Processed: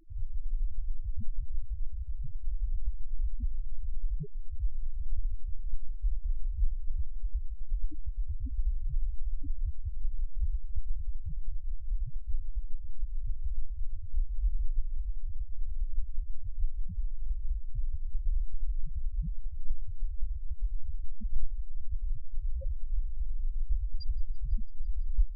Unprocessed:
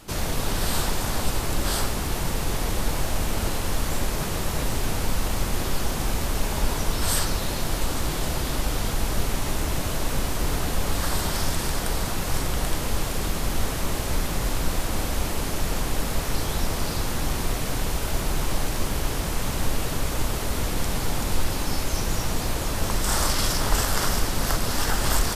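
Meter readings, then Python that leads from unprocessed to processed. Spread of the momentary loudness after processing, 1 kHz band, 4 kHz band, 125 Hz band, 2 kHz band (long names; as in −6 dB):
5 LU, below −40 dB, below −35 dB, −10.0 dB, below −40 dB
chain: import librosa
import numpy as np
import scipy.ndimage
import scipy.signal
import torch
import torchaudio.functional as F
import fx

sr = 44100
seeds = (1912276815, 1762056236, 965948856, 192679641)

p1 = fx.envelope_flatten(x, sr, power=0.6)
p2 = fx.peak_eq(p1, sr, hz=4900.0, db=9.5, octaves=0.49)
p3 = fx.vibrato(p2, sr, rate_hz=0.6, depth_cents=16.0)
p4 = fx.sample_hold(p3, sr, seeds[0], rate_hz=9600.0, jitter_pct=0)
p5 = p3 + (p4 * 10.0 ** (-4.0 / 20.0))
p6 = fx.spec_topn(p5, sr, count=1)
p7 = fx.echo_wet_highpass(p6, sr, ms=167, feedback_pct=84, hz=4400.0, wet_db=-24)
y = p7 * 10.0 ** (2.0 / 20.0)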